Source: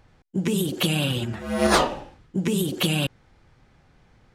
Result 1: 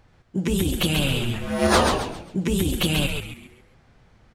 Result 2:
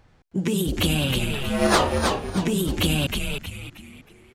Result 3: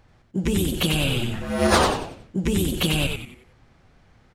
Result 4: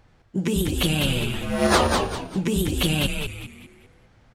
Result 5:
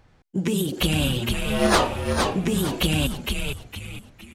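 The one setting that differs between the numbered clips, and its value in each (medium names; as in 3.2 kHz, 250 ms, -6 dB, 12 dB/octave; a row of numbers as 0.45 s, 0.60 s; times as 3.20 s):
frequency-shifting echo, time: 135 ms, 315 ms, 92 ms, 199 ms, 461 ms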